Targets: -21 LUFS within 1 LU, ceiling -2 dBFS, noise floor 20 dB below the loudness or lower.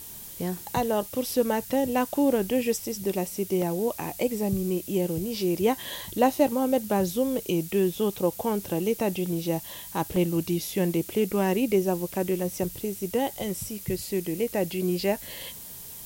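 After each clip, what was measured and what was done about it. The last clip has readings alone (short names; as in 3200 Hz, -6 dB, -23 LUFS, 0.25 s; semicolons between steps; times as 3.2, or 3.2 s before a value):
dropouts 4; longest dropout 2.2 ms; noise floor -42 dBFS; noise floor target -47 dBFS; loudness -27.0 LUFS; peak -9.0 dBFS; loudness target -21.0 LUFS
-> interpolate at 3.62/6.33/9.26/10.16, 2.2 ms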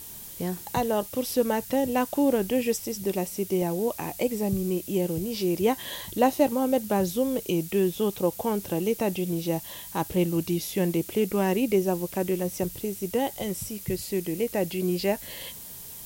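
dropouts 0; noise floor -42 dBFS; noise floor target -47 dBFS
-> noise print and reduce 6 dB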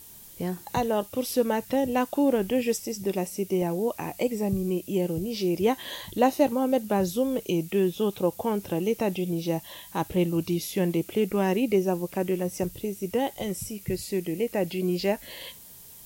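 noise floor -48 dBFS; loudness -27.5 LUFS; peak -9.0 dBFS; loudness target -21.0 LUFS
-> gain +6.5 dB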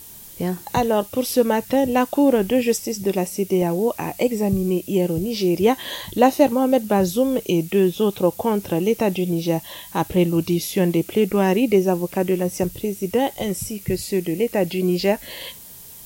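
loudness -21.0 LUFS; peak -2.5 dBFS; noise floor -41 dBFS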